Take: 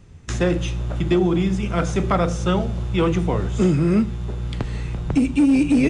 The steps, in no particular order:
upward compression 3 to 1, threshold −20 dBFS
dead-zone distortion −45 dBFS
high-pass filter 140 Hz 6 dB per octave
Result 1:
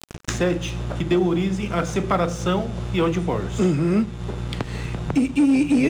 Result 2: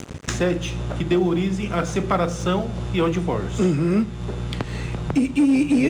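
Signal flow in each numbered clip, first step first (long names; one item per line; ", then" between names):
high-pass filter, then dead-zone distortion, then upward compression
dead-zone distortion, then high-pass filter, then upward compression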